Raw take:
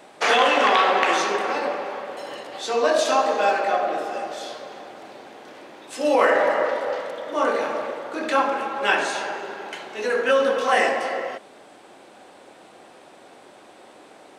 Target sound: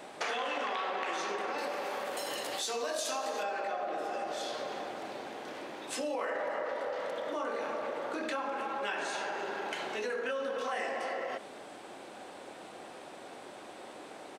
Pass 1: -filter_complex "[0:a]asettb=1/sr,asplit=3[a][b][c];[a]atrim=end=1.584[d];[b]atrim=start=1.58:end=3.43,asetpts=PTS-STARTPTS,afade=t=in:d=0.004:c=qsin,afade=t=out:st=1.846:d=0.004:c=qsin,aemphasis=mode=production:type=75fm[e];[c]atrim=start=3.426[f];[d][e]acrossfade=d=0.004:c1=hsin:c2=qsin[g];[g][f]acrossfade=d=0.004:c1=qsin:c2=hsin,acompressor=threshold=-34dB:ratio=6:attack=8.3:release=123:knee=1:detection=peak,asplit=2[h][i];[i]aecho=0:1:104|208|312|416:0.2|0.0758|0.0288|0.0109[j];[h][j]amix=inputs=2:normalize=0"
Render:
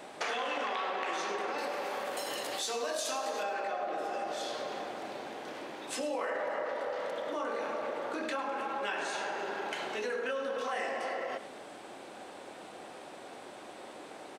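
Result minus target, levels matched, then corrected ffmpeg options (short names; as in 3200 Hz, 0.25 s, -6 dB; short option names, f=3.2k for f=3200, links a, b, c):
echo-to-direct +11 dB
-filter_complex "[0:a]asettb=1/sr,asplit=3[a][b][c];[a]atrim=end=1.584[d];[b]atrim=start=1.58:end=3.43,asetpts=PTS-STARTPTS,afade=t=in:d=0.004:c=qsin,afade=t=out:st=1.846:d=0.004:c=qsin,aemphasis=mode=production:type=75fm[e];[c]atrim=start=3.426[f];[d][e]acrossfade=d=0.004:c1=hsin:c2=qsin[g];[g][f]acrossfade=d=0.004:c1=qsin:c2=hsin,acompressor=threshold=-34dB:ratio=6:attack=8.3:release=123:knee=1:detection=peak,asplit=2[h][i];[i]aecho=0:1:104|208:0.0562|0.0214[j];[h][j]amix=inputs=2:normalize=0"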